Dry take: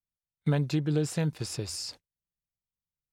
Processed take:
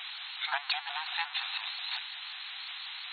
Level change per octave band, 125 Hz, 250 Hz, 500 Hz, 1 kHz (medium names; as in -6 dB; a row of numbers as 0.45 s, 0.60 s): under -40 dB, under -40 dB, -19.0 dB, +8.5 dB